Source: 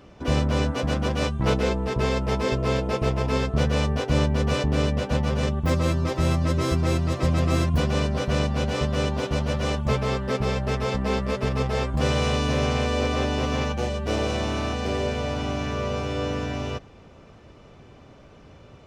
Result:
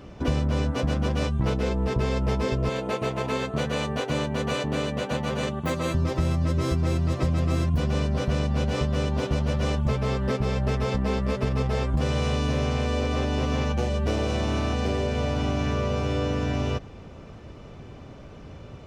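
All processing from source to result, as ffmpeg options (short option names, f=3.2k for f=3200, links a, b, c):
-filter_complex "[0:a]asettb=1/sr,asplit=3[a][b][c];[a]atrim=end=2.694[d];[b]atrim=start=2.69:end=5.95,asetpts=PTS-STARTPTS,afade=t=in:d=0.004:c=qsin,afade=t=out:st=3.256:d=0.004:c=qsin,highpass=130,lowshelf=f=380:g=-8,bandreject=f=5.2k:w=5.6[e];[c]atrim=start=5.946[f];[d][e]acrossfade=d=0.004:c1=hsin:c2=qsin[g];[g][f]acrossfade=d=0.004:c1=qsin:c2=hsin,acompressor=threshold=-27dB:ratio=6,lowshelf=f=310:g=5,volume=2.5dB"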